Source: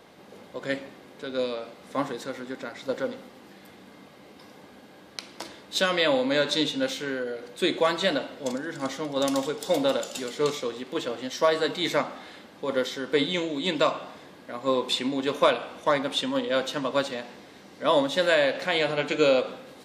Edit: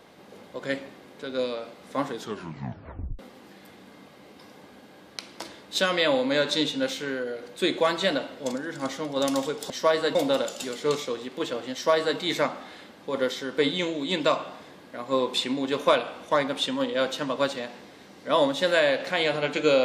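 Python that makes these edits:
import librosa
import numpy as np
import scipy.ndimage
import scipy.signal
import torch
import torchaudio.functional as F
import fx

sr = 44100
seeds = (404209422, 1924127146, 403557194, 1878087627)

y = fx.edit(x, sr, fx.tape_stop(start_s=2.11, length_s=1.08),
    fx.duplicate(start_s=11.28, length_s=0.45, to_s=9.7), tone=tone)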